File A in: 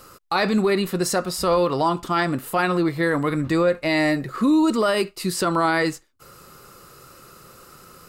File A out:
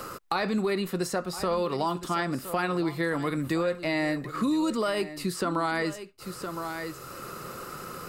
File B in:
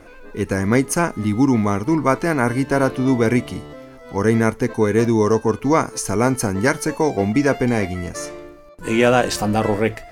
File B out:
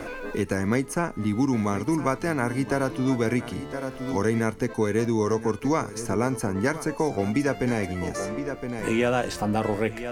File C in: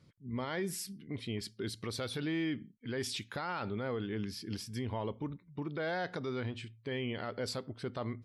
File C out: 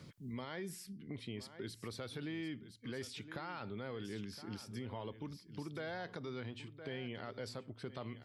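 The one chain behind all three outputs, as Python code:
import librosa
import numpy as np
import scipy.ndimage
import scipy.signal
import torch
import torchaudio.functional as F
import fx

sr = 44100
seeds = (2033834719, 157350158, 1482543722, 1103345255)

y = x + 10.0 ** (-15.5 / 20.0) * np.pad(x, (int(1015 * sr / 1000.0), 0))[:len(x)]
y = fx.band_squash(y, sr, depth_pct=70)
y = y * 10.0 ** (-7.5 / 20.0)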